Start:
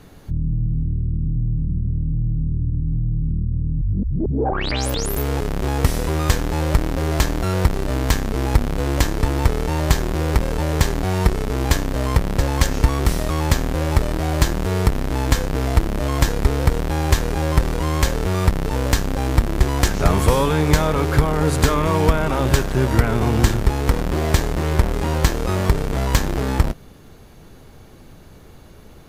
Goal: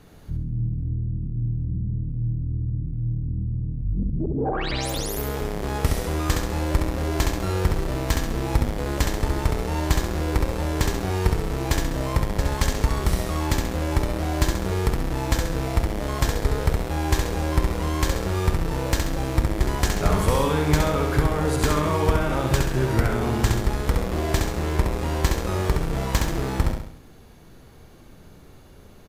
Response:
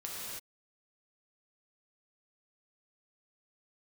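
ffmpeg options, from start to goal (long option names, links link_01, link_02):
-af "aecho=1:1:67|134|201|268|335|402:0.631|0.297|0.139|0.0655|0.0308|0.0145,volume=-5.5dB"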